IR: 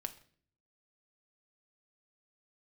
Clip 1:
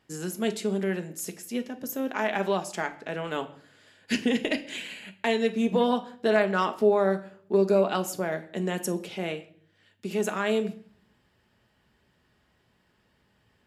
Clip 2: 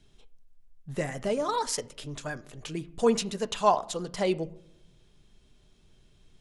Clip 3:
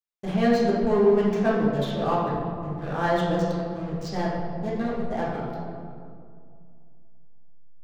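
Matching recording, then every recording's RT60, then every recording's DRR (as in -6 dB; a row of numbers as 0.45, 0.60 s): 1; 0.50, 0.75, 2.2 s; 6.5, 10.0, -6.5 dB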